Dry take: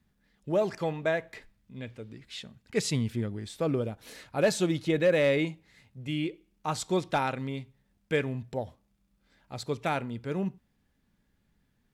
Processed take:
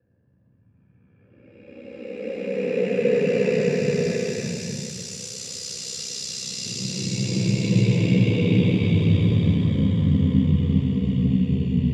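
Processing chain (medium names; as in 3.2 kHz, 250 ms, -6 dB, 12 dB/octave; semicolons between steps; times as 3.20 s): Doppler pass-by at 2.71 s, 29 m/s, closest 4 m; level-controlled noise filter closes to 560 Hz, open at -37.5 dBFS; Paulstretch 32×, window 0.10 s, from 2.44 s; ring modulator 32 Hz; reverberation RT60 0.85 s, pre-delay 3 ms, DRR 3.5 dB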